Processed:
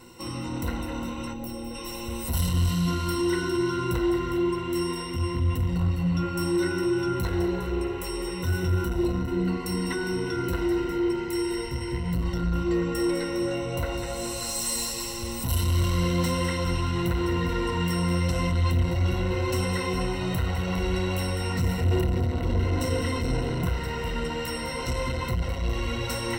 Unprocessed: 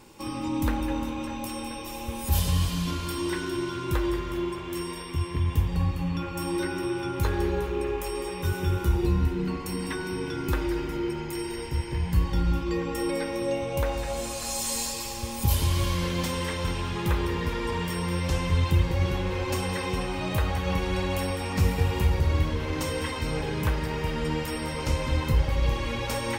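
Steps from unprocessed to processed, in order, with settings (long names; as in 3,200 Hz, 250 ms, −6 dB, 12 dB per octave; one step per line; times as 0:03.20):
0:01.33–0:01.75: gain on a spectral selection 860–12,000 Hz −9 dB
0:21.84–0:23.66: low shelf with overshoot 480 Hz +7 dB, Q 1.5
soft clipping −24.5 dBFS, distortion −7 dB
EQ curve with evenly spaced ripples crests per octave 2, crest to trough 15 dB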